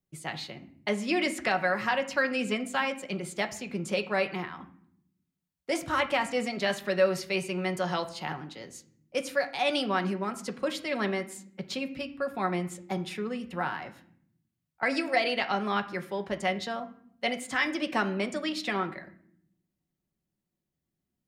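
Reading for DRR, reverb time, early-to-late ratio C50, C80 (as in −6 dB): 5.0 dB, 0.65 s, 14.5 dB, 17.5 dB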